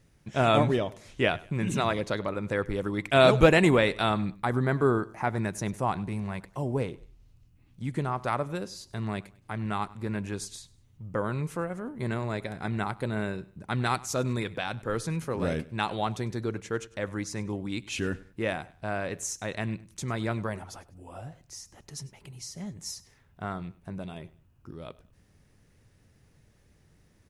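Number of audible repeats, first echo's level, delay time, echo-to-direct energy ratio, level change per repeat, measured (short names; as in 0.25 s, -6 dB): 2, -21.0 dB, 99 ms, -20.5 dB, -9.5 dB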